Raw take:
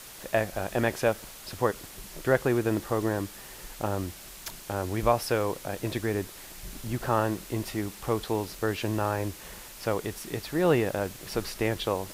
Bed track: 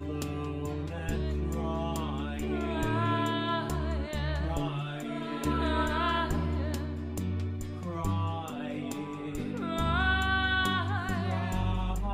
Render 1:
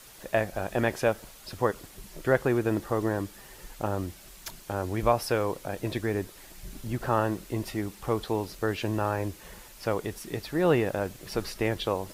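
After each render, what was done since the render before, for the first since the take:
broadband denoise 6 dB, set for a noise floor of −46 dBFS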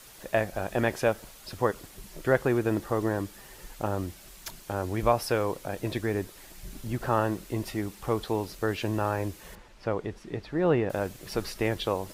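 0:09.55–0:10.90: head-to-tape spacing loss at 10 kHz 20 dB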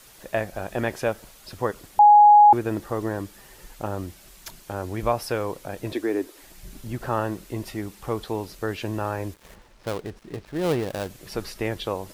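0:01.99–0:02.53: beep over 832 Hz −8.5 dBFS
0:05.93–0:06.42: low shelf with overshoot 210 Hz −12.5 dB, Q 3
0:09.34–0:11.10: gap after every zero crossing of 0.19 ms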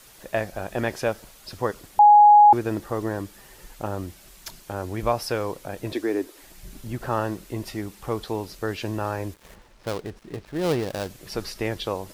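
dynamic equaliser 5,000 Hz, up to +4 dB, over −48 dBFS, Q 1.8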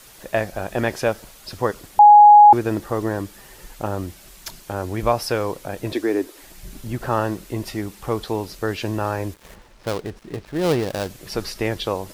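level +4 dB

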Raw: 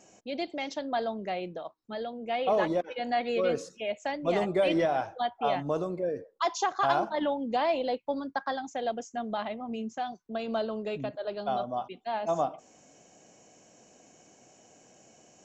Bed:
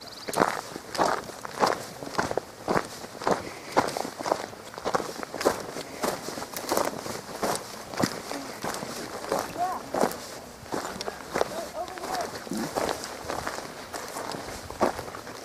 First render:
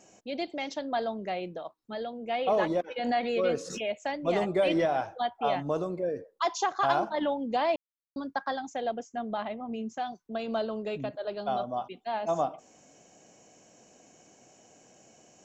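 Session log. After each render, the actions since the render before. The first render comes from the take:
0:02.96–0:03.93: background raised ahead of every attack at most 58 dB per second
0:07.76–0:08.16: silence
0:08.82–0:09.86: high-shelf EQ 4,600 Hz −9 dB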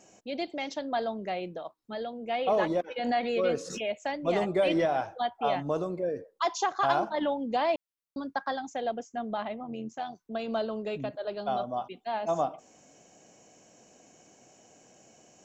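0:09.63–0:10.17: amplitude modulation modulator 90 Hz, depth 35%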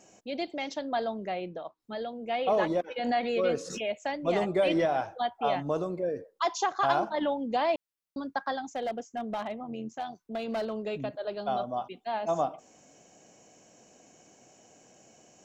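0:01.27–0:01.80: high-frequency loss of the air 97 metres
0:08.64–0:10.73: hard clipping −27.5 dBFS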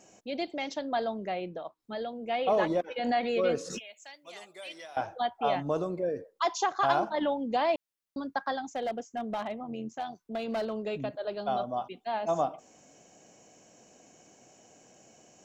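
0:03.79–0:04.97: first difference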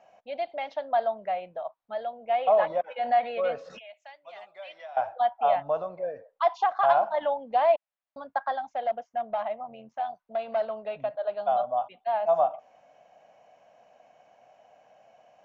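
Bessel low-pass filter 2,500 Hz, order 4
low shelf with overshoot 480 Hz −10 dB, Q 3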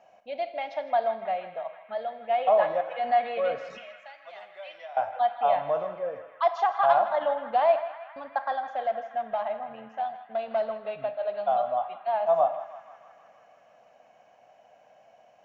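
feedback echo with a band-pass in the loop 159 ms, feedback 81%, band-pass 1,800 Hz, level −11 dB
four-comb reverb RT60 0.79 s, combs from 28 ms, DRR 11.5 dB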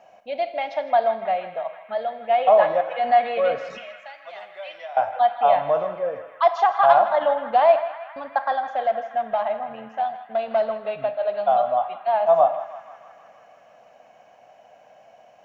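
level +6 dB

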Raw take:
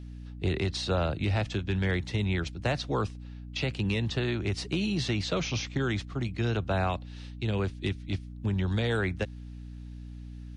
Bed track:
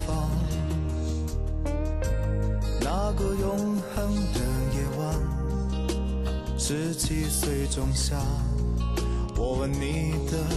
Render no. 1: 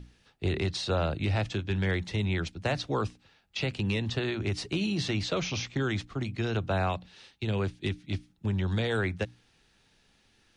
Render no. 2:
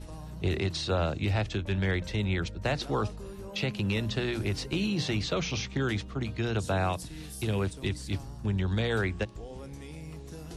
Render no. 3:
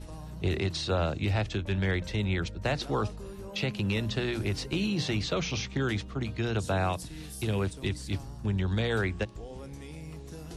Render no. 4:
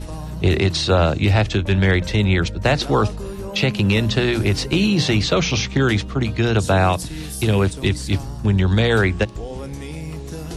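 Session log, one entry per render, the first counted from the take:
mains-hum notches 60/120/180/240/300 Hz
mix in bed track −15.5 dB
no processing that can be heard
level +12 dB

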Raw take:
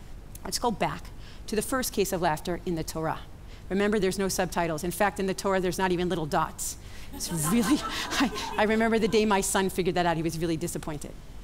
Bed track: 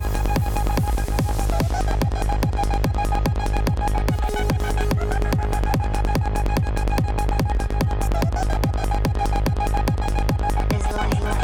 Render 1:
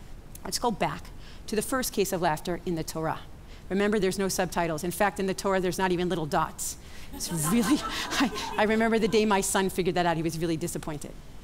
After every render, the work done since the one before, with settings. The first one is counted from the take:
hum removal 50 Hz, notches 2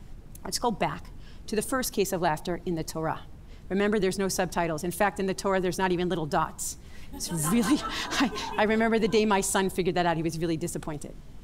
broadband denoise 6 dB, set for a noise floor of −45 dBFS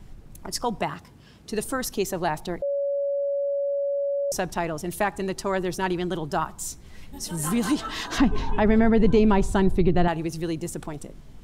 0:00.83–0:01.51: high-pass filter 97 Hz
0:02.62–0:04.32: beep over 563 Hz −22.5 dBFS
0:08.18–0:10.08: RIAA equalisation playback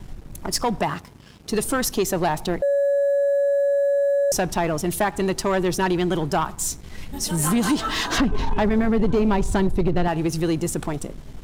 downward compressor 2.5 to 1, threshold −23 dBFS, peak gain reduction 7 dB
leveller curve on the samples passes 2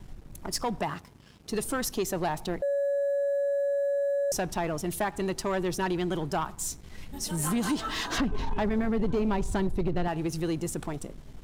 level −7.5 dB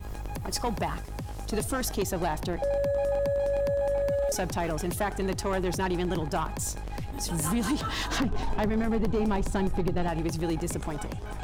mix in bed track −15.5 dB

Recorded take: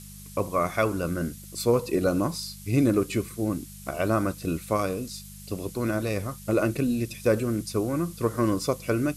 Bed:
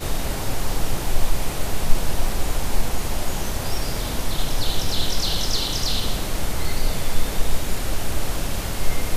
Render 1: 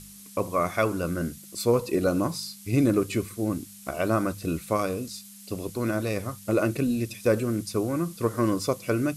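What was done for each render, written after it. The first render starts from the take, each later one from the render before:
hum removal 50 Hz, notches 3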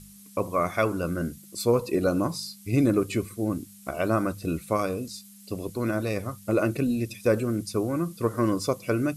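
broadband denoise 6 dB, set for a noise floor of −47 dBFS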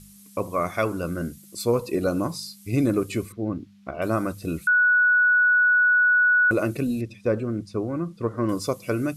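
0:03.32–0:04.02: high-frequency loss of the air 250 metres
0:04.67–0:06.51: beep over 1,470 Hz −15 dBFS
0:07.01–0:08.49: head-to-tape spacing loss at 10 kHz 20 dB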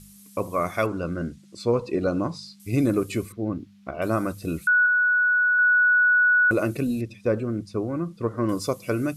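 0:00.86–0:02.60: high-frequency loss of the air 110 metres
0:04.86–0:05.59: high-frequency loss of the air 310 metres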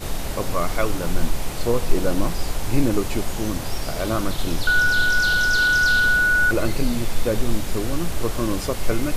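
mix in bed −2.5 dB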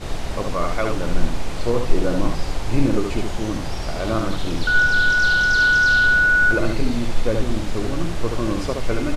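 high-frequency loss of the air 70 metres
on a send: single-tap delay 72 ms −4.5 dB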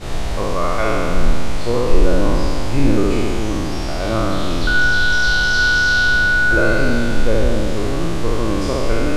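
peak hold with a decay on every bin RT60 2.56 s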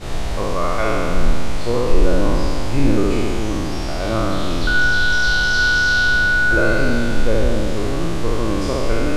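level −1 dB
brickwall limiter −3 dBFS, peak gain reduction 0.5 dB

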